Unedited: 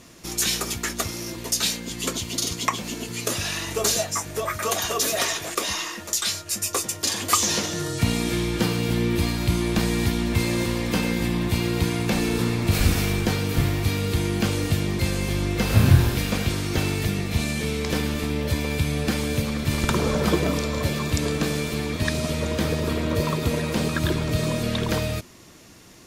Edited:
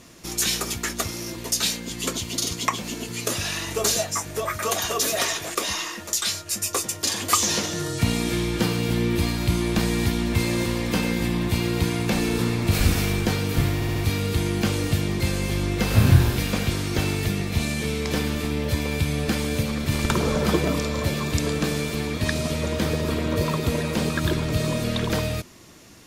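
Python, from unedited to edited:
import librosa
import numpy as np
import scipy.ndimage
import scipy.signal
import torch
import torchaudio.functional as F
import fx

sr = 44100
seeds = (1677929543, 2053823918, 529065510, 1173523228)

y = fx.edit(x, sr, fx.stutter(start_s=13.75, slice_s=0.07, count=4), tone=tone)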